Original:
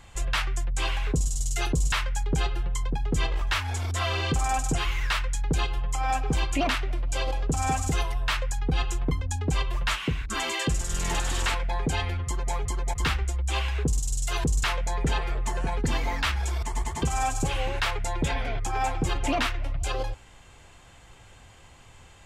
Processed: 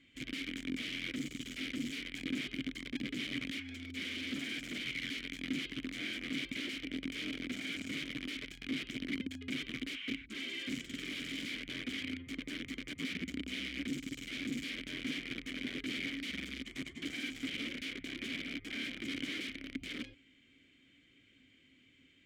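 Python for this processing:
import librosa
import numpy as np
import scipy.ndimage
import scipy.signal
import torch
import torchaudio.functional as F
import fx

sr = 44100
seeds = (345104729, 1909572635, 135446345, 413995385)

y = (np.mod(10.0 ** (22.5 / 20.0) * x + 1.0, 2.0) - 1.0) / 10.0 ** (22.5 / 20.0)
y = fx.vowel_filter(y, sr, vowel='i')
y = F.gain(torch.from_numpy(y), 2.5).numpy()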